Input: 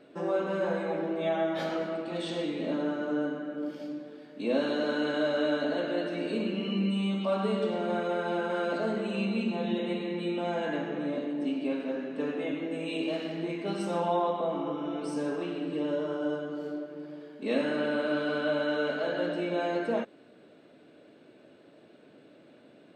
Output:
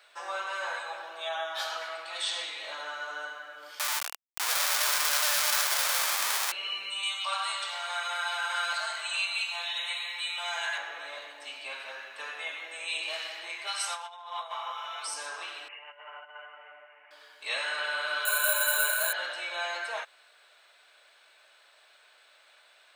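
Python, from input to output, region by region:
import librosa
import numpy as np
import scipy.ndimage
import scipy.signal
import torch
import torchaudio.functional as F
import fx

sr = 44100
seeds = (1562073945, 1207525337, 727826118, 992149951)

y = fx.chain(x, sr, fx.highpass(hz=270.0, slope=6),
    fx.peak_eq(hz=2100.0, db=-11.5, octaves=0.32), at=(0.79, 1.82))
y = fx.chain(y, sr, fx.sample_sort(block=8),
    fx.highpass(hz=64.0, slope=24),
    fx.schmitt(flips_db=-38.5), at=(3.79, 6.52))
y = fx.chain(y, sr, fx.highpass(hz=620.0, slope=24),
    fx.tilt_eq(slope=2.0), at=(7.03, 10.78))
y = fx.chain(y, sr, fx.highpass(hz=760.0, slope=12),
    fx.over_compress(threshold_db=-37.0, ratio=-0.5), at=(13.67, 15.07))
y = fx.chain(y, sr, fx.tilt_eq(slope=4.0),
    fx.over_compress(threshold_db=-37.0, ratio=-0.5),
    fx.cheby_ripple(hz=2900.0, ripple_db=9), at=(15.68, 17.11))
y = fx.chain(y, sr, fx.ripple_eq(per_octave=1.5, db=9),
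    fx.resample_bad(factor=4, down='none', up='hold'), at=(18.25, 19.13))
y = scipy.signal.sosfilt(scipy.signal.butter(4, 910.0, 'highpass', fs=sr, output='sos'), y)
y = fx.high_shelf(y, sr, hz=3600.0, db=10.0)
y = fx.notch(y, sr, hz=2800.0, q=26.0)
y = y * 10.0 ** (4.5 / 20.0)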